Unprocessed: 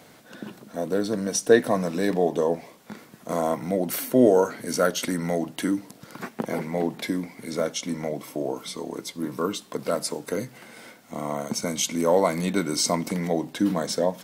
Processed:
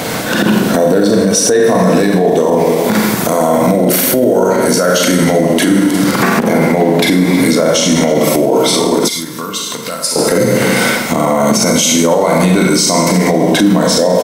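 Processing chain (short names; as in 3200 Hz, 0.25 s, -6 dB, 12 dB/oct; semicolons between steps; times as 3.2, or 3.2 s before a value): 2.29–3.76 high shelf 8400 Hz +6.5 dB; echo 0.319 s -20 dB; Schroeder reverb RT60 0.83 s, combs from 33 ms, DRR 1 dB; compressor 4:1, threshold -35 dBFS, peak gain reduction 20.5 dB; 9.08–10.16 passive tone stack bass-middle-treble 5-5-5; maximiser +32 dB; gain -1 dB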